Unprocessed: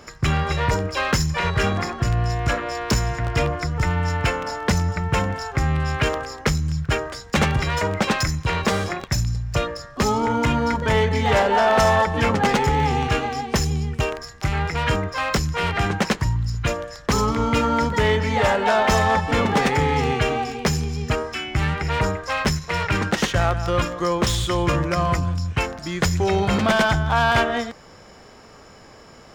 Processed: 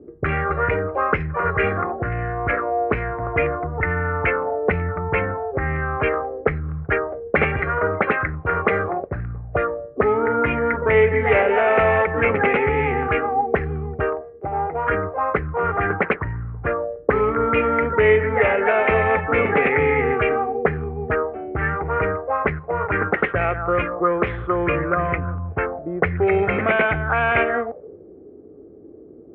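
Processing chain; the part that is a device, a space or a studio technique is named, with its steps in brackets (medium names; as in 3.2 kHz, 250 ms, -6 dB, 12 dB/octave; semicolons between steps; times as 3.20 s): 14.21–14.91 s: tilt EQ +2 dB/octave; envelope filter bass rig (touch-sensitive low-pass 300–2400 Hz up, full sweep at -15.5 dBFS; cabinet simulation 78–2200 Hz, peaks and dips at 130 Hz -9 dB, 210 Hz -7 dB, 430 Hz +7 dB, 960 Hz -9 dB, 1.7 kHz -4 dB)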